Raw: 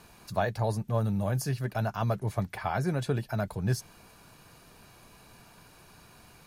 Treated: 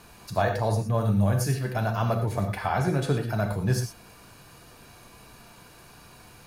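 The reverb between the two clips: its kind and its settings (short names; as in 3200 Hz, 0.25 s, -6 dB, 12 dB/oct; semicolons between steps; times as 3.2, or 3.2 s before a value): non-linear reverb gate 0.14 s flat, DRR 3.5 dB; gain +3 dB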